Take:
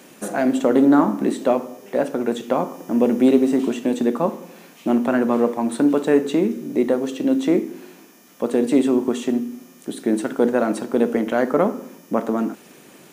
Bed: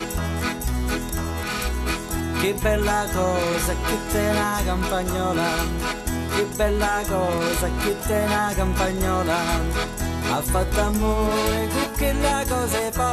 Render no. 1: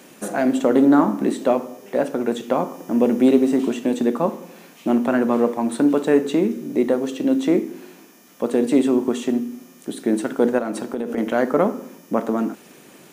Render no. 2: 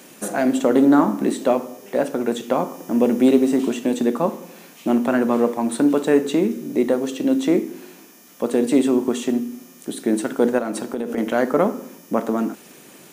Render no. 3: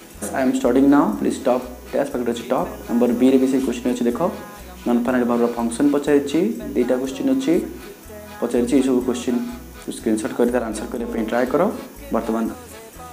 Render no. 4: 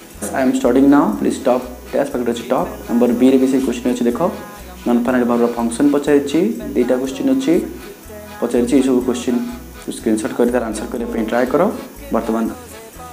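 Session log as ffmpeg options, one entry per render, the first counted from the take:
-filter_complex "[0:a]asettb=1/sr,asplit=3[a][b][c];[a]atrim=end=10.584[d];[b]atrim=start=10.58:end=11.18,asetpts=PTS-STARTPTS,afade=t=in:d=0.004:c=qsin,afade=t=out:st=0.596:d=0.004:c=qsin,acompressor=threshold=-21dB:ratio=6:attack=3.2:release=140:knee=1:detection=peak[e];[c]atrim=start=11.176[f];[d][e]acrossfade=d=0.004:c1=hsin:c2=qsin[g];[g][f]acrossfade=d=0.004:c1=qsin:c2=hsin"
-af "highshelf=f=4.2k:g=5"
-filter_complex "[1:a]volume=-16dB[a];[0:a][a]amix=inputs=2:normalize=0"
-af "volume=3.5dB,alimiter=limit=-2dB:level=0:latency=1"

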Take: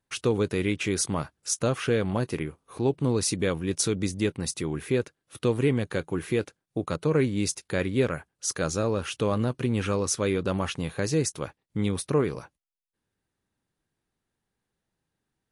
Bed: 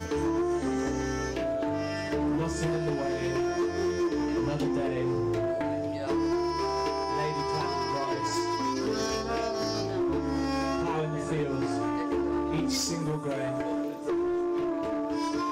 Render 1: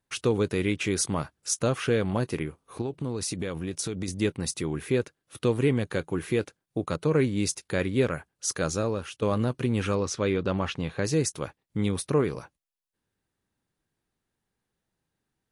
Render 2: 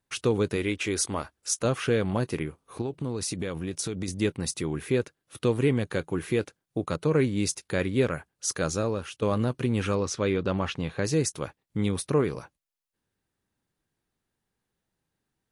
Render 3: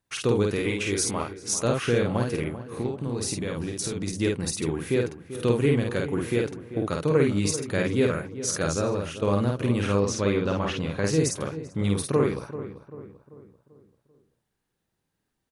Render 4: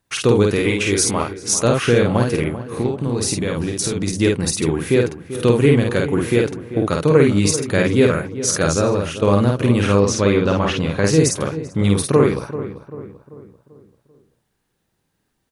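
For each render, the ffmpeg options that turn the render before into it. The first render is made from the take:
-filter_complex "[0:a]asettb=1/sr,asplit=3[a][b][c];[a]atrim=end=2.814[d];[b]atrim=start=2.81:end=4.08,asetpts=PTS-STARTPTS,afade=t=in:d=0.004:c=qsin,afade=t=out:st=1.266:d=0.004:c=qsin,acompressor=threshold=-27dB:ratio=6:attack=3.2:release=140:knee=1:detection=peak[e];[c]atrim=start=4.076[f];[d][e]acrossfade=d=0.004:c1=hsin:c2=qsin[g];[g][f]acrossfade=d=0.004:c1=qsin:c2=hsin,asettb=1/sr,asplit=3[h][i][j];[h]atrim=end=9.954[k];[i]atrim=start=9.95:end=11.05,asetpts=PTS-STARTPTS,afade=t=in:d=0.004:c=qsin,afade=t=out:st=1.096:d=0.004:c=qsin,lowpass=5k[l];[j]atrim=start=11.046[m];[k][l]acrossfade=d=0.004:c1=hsin:c2=qsin[n];[n][m]acrossfade=d=0.004:c1=qsin:c2=hsin,asplit=2[o][p];[o]atrim=end=9.22,asetpts=PTS-STARTPTS,afade=t=out:st=8.61:d=0.61:c=qsin:silence=0.237137[q];[p]atrim=start=9.22,asetpts=PTS-STARTPTS,afade=t=in:d=0.004:c=hsin:silence=0.237137[r];[q][r]concat=n=2:v=0:a=1"
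-filter_complex "[0:a]asettb=1/sr,asplit=3[a][b][c];[a]atrim=end=0.564[d];[b]atrim=start=0.56:end=1.65,asetpts=PTS-STARTPTS,afade=t=in:d=0.004:c=qsin,afade=t=out:st=1.086:d=0.004:c=qsin,equalizer=f=150:t=o:w=0.77:g=-11[e];[c]atrim=start=1.646[f];[d][e]acrossfade=d=0.004:c1=hsin:c2=qsin[g];[g][f]acrossfade=d=0.004:c1=qsin:c2=hsin"
-filter_complex "[0:a]asplit=2[a][b];[b]adelay=50,volume=-2.5dB[c];[a][c]amix=inputs=2:normalize=0,asplit=2[d][e];[e]adelay=390,lowpass=f=1.6k:p=1,volume=-12.5dB,asplit=2[f][g];[g]adelay=390,lowpass=f=1.6k:p=1,volume=0.47,asplit=2[h][i];[i]adelay=390,lowpass=f=1.6k:p=1,volume=0.47,asplit=2[j][k];[k]adelay=390,lowpass=f=1.6k:p=1,volume=0.47,asplit=2[l][m];[m]adelay=390,lowpass=f=1.6k:p=1,volume=0.47[n];[d][f][h][j][l][n]amix=inputs=6:normalize=0"
-af "volume=8.5dB,alimiter=limit=-2dB:level=0:latency=1"

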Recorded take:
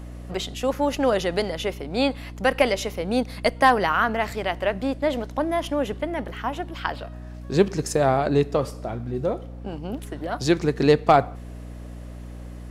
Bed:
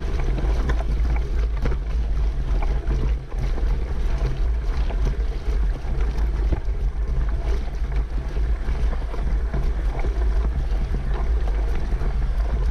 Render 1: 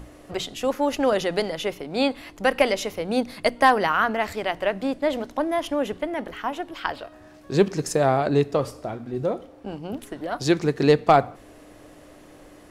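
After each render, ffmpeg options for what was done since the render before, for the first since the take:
-af "bandreject=f=60:t=h:w=6,bandreject=f=120:t=h:w=6,bandreject=f=180:t=h:w=6,bandreject=f=240:t=h:w=6"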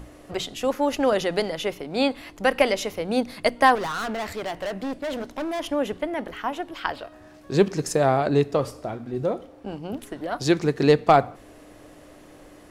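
-filter_complex "[0:a]asettb=1/sr,asplit=3[a][b][c];[a]atrim=end=3.754[d];[b]atrim=start=3.75:end=5.6,asetpts=PTS-STARTPTS,afade=t=in:d=0.004:c=qsin,afade=t=out:st=1.846:d=0.004:c=qsin,asoftclip=type=hard:threshold=-26dB[e];[c]atrim=start=5.596[f];[d][e]acrossfade=d=0.004:c1=hsin:c2=qsin[g];[g][f]acrossfade=d=0.004:c1=qsin:c2=hsin"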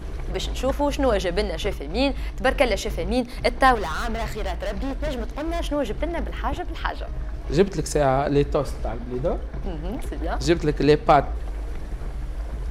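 -filter_complex "[1:a]volume=-8dB[a];[0:a][a]amix=inputs=2:normalize=0"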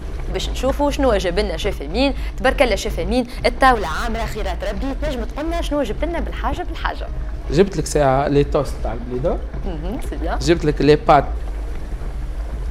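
-af "volume=4.5dB,alimiter=limit=-1dB:level=0:latency=1"

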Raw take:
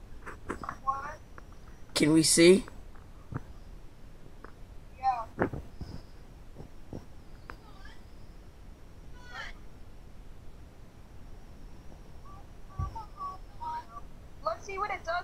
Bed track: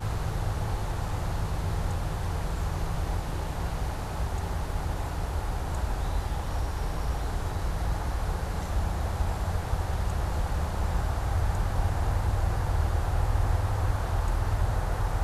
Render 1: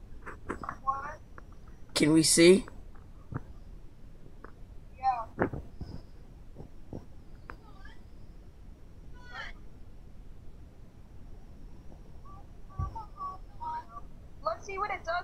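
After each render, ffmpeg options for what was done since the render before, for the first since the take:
-af "afftdn=nr=6:nf=-52"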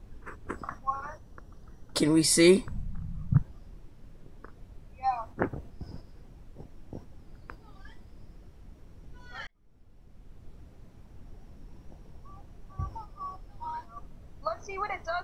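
-filter_complex "[0:a]asettb=1/sr,asplit=3[a][b][c];[a]atrim=end=1.054[d];[b]atrim=start=1.05:end=2.06,asetpts=PTS-STARTPTS,afade=t=in:d=0.004:c=qsin,afade=t=out:st=1.006:d=0.004:c=qsin,equalizer=f=2.3k:t=o:w=0.42:g=-9[e];[c]atrim=start=2.056[f];[d][e]acrossfade=d=0.004:c1=hsin:c2=qsin[g];[g][f]acrossfade=d=0.004:c1=qsin:c2=hsin,asettb=1/sr,asplit=3[h][i][j];[h]atrim=end=2.674[k];[i]atrim=start=2.67:end=3.43,asetpts=PTS-STARTPTS,afade=t=in:d=0.004:c=qsin,afade=t=out:st=0.756:d=0.004:c=qsin,lowshelf=f=240:t=q:w=3:g=11.5[l];[j]atrim=start=3.426[m];[k][l]acrossfade=d=0.004:c1=hsin:c2=qsin[n];[n][m]acrossfade=d=0.004:c1=qsin:c2=hsin,asplit=2[o][p];[o]atrim=end=9.47,asetpts=PTS-STARTPTS,afade=t=out:st=9.466:d=0.004:c=hsin[q];[p]atrim=start=9.47,asetpts=PTS-STARTPTS,afade=t=in:d=1.03[r];[q][r]concat=n=2:v=0:a=1"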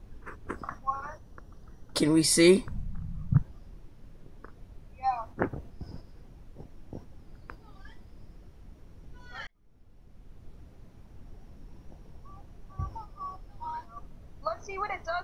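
-af "bandreject=f=7.7k:w=13"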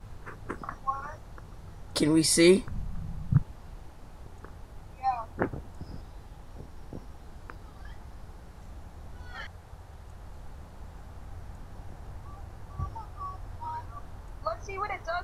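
-filter_complex "[1:a]volume=-18.5dB[a];[0:a][a]amix=inputs=2:normalize=0"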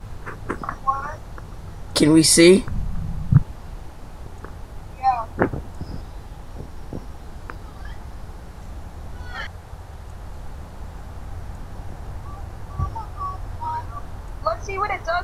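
-af "volume=9.5dB,alimiter=limit=-2dB:level=0:latency=1"

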